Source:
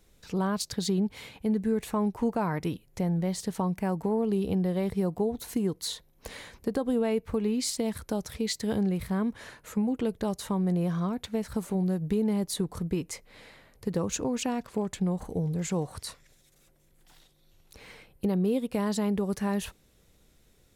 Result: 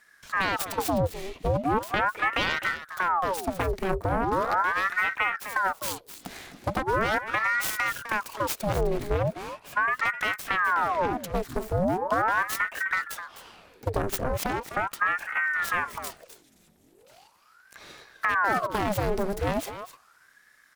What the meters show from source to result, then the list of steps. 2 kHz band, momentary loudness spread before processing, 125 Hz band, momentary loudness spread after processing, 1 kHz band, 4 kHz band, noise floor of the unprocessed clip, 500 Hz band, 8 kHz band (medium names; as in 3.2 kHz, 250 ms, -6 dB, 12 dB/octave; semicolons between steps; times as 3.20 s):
+19.0 dB, 8 LU, -2.5 dB, 8 LU, +12.0 dB, +2.0 dB, -63 dBFS, +1.0 dB, -1.0 dB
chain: self-modulated delay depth 0.68 ms; delay 256 ms -12 dB; ring modulator with a swept carrier 950 Hz, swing 80%, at 0.39 Hz; trim +5.5 dB